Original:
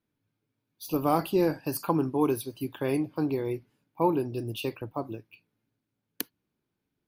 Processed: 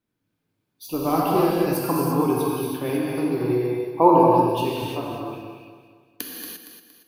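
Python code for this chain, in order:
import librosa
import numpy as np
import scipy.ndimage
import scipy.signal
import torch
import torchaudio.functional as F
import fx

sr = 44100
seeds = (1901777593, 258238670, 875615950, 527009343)

y = fx.peak_eq(x, sr, hz=730.0, db=11.0, octaves=2.3, at=(3.5, 4.17))
y = fx.echo_feedback(y, sr, ms=232, feedback_pct=41, wet_db=-9.0)
y = fx.rev_gated(y, sr, seeds[0], gate_ms=370, shape='flat', drr_db=-4.0)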